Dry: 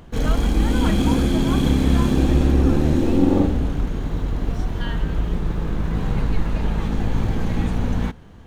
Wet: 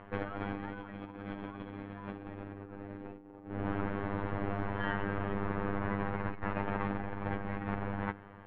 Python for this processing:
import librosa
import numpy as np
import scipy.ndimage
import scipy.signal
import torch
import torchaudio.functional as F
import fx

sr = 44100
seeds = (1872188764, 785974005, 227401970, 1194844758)

y = fx.low_shelf(x, sr, hz=420.0, db=-9.5)
y = fx.hum_notches(y, sr, base_hz=50, count=7)
y = fx.robotise(y, sr, hz=100.0)
y = scipy.signal.sosfilt(scipy.signal.butter(4, 2100.0, 'lowpass', fs=sr, output='sos'), y)
y = fx.low_shelf(y, sr, hz=130.0, db=-6.0)
y = fx.over_compress(y, sr, threshold_db=-36.0, ratio=-0.5)